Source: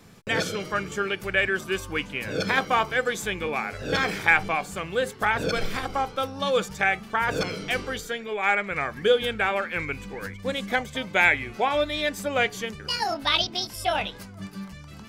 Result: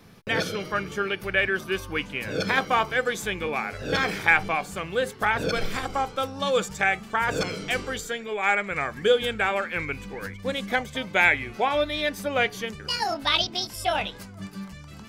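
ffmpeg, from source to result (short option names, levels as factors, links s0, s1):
-af "asetnsamples=n=441:p=0,asendcmd='2.01 equalizer g -2;5.72 equalizer g 6;9.71 equalizer g -1.5;11.74 equalizer g -7.5;12.68 equalizer g 2',equalizer=f=7500:t=o:w=0.29:g=-11"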